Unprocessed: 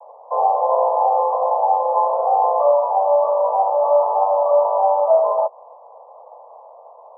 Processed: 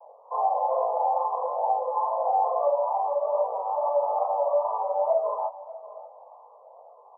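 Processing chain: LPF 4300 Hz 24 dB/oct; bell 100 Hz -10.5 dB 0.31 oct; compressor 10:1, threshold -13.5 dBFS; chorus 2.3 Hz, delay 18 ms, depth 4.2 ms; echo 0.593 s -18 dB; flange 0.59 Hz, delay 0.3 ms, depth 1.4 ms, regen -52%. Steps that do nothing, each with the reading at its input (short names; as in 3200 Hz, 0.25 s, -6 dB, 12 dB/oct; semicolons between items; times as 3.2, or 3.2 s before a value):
LPF 4300 Hz: input band ends at 1200 Hz; bell 100 Hz: input band starts at 430 Hz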